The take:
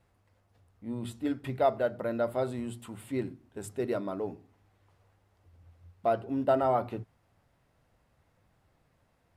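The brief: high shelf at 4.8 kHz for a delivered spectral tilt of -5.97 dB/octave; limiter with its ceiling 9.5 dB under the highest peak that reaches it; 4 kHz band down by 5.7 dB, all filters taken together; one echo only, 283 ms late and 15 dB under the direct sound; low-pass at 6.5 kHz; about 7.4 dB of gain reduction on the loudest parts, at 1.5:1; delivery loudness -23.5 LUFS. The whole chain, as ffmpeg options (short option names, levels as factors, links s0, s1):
-af "lowpass=6500,equalizer=f=4000:t=o:g=-3.5,highshelf=f=4800:g=-8,acompressor=threshold=0.00794:ratio=1.5,alimiter=level_in=2.24:limit=0.0631:level=0:latency=1,volume=0.447,aecho=1:1:283:0.178,volume=8.41"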